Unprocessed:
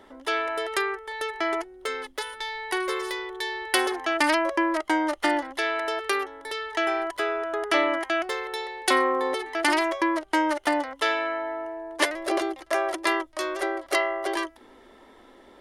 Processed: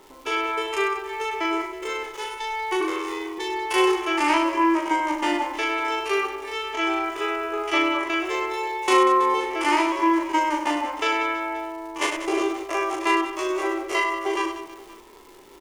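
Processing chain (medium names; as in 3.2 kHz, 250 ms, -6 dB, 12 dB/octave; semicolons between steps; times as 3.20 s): spectrogram pixelated in time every 50 ms; rippled EQ curve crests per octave 0.73, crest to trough 10 dB; 2.80–3.38 s: ring modulator 45 Hz; crackle 300 per s -40 dBFS; reverse bouncing-ball echo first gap 40 ms, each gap 1.5×, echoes 5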